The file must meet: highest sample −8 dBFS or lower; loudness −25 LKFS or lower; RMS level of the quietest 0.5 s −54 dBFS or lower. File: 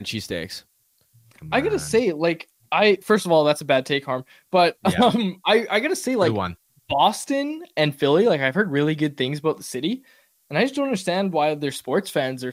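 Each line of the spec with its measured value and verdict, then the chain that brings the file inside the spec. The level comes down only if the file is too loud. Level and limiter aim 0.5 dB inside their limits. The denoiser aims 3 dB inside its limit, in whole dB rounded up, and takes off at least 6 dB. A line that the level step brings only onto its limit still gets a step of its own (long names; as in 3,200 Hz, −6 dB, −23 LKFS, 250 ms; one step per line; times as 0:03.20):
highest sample −6.0 dBFS: out of spec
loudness −21.5 LKFS: out of spec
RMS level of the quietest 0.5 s −65 dBFS: in spec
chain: level −4 dB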